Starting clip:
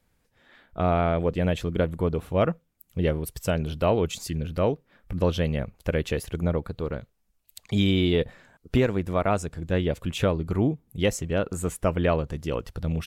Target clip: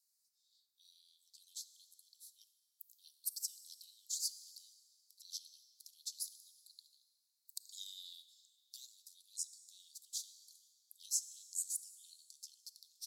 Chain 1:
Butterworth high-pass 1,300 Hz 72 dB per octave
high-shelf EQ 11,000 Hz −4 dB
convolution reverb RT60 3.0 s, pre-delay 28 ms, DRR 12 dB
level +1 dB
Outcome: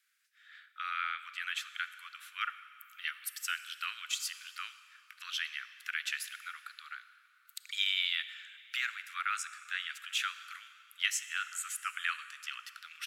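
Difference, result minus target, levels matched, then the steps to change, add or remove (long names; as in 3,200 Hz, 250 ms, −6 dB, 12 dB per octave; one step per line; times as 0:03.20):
4,000 Hz band +5.5 dB
change: Butterworth high-pass 4,200 Hz 72 dB per octave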